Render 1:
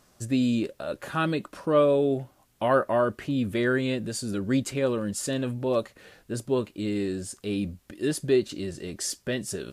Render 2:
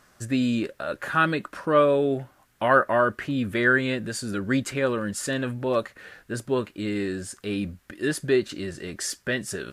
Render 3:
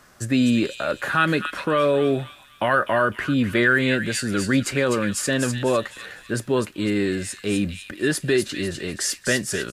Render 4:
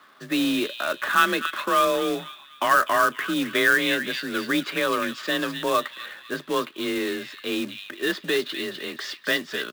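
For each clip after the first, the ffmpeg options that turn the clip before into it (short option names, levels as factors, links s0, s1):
-af "equalizer=f=1600:w=1.3:g=10"
-filter_complex "[0:a]acrossover=split=110|1800[s0][s1][s2];[s1]alimiter=limit=0.119:level=0:latency=1[s3];[s2]aecho=1:1:251|502|753|1004|1255:0.562|0.214|0.0812|0.0309|0.0117[s4];[s0][s3][s4]amix=inputs=3:normalize=0,volume=1.88"
-af "highpass=260,equalizer=f=440:t=q:w=4:g=-5,equalizer=f=690:t=q:w=4:g=-4,equalizer=f=1100:t=q:w=4:g=8,equalizer=f=3500:t=q:w=4:g=8,lowpass=f=4100:w=0.5412,lowpass=f=4100:w=1.3066,afreqshift=33,acrusher=bits=3:mode=log:mix=0:aa=0.000001,volume=0.841"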